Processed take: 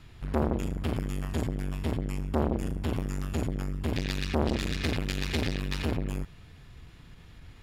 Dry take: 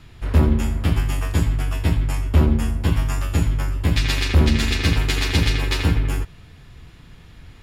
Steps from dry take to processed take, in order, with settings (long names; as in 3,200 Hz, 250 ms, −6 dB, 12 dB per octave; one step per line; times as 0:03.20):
saturating transformer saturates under 590 Hz
level −5.5 dB